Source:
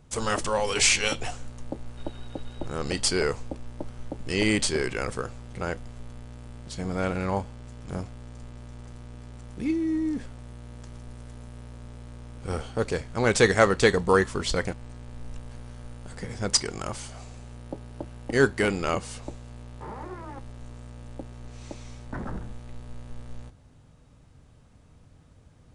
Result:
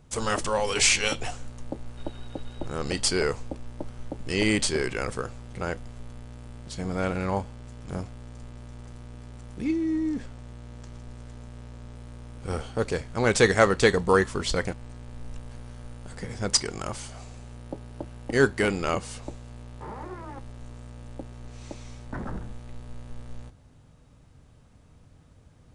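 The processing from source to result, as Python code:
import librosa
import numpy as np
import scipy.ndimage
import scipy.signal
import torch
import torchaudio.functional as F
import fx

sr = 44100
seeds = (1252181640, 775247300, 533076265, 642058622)

y = fx.lowpass(x, sr, hz=9000.0, slope=24, at=(9.62, 11.95))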